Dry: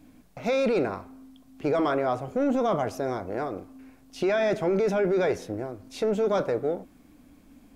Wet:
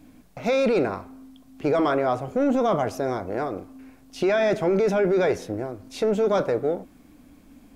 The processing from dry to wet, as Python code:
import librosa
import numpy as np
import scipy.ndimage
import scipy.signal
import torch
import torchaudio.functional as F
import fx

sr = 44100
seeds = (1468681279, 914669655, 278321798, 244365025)

y = F.gain(torch.from_numpy(x), 3.0).numpy()